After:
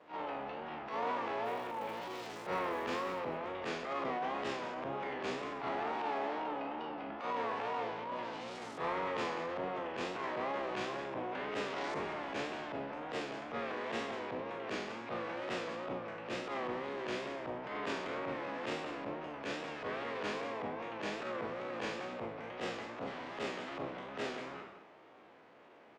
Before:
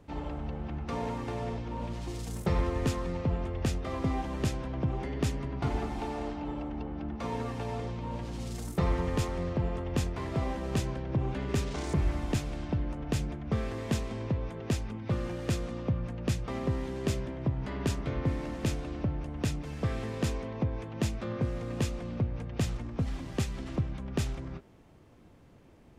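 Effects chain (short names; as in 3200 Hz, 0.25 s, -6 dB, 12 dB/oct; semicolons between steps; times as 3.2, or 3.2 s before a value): spectral trails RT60 0.67 s; in parallel at +2 dB: compressor, threshold -35 dBFS, peak gain reduction 13 dB; on the sum: wow and flutter 110 cents; BPF 570–2800 Hz; 1.44–3.18 crackle 500/s -48 dBFS; on a send: loudspeakers at several distances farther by 15 m -10 dB, 65 m -12 dB; on the sum: transient shaper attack -12 dB, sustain +2 dB; gain -2 dB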